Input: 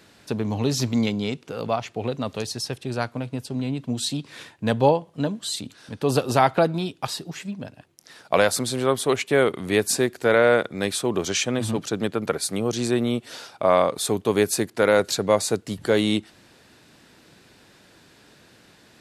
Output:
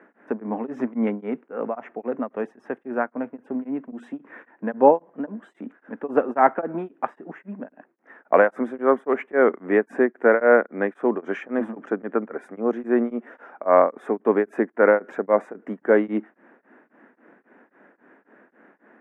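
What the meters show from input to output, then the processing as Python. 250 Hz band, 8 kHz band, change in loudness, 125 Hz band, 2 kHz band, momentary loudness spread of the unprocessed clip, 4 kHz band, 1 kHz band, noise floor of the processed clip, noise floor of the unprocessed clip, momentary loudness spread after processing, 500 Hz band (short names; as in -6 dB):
-0.5 dB, under -35 dB, +0.5 dB, under -10 dB, 0.0 dB, 11 LU, under -25 dB, +1.5 dB, -65 dBFS, -55 dBFS, 17 LU, +1.5 dB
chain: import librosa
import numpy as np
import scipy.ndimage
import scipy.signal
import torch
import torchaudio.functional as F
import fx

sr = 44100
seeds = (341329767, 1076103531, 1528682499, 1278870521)

y = scipy.signal.sosfilt(scipy.signal.ellip(3, 1.0, 40, [230.0, 1800.0], 'bandpass', fs=sr, output='sos'), x)
y = y * np.abs(np.cos(np.pi * 3.7 * np.arange(len(y)) / sr))
y = F.gain(torch.from_numpy(y), 4.5).numpy()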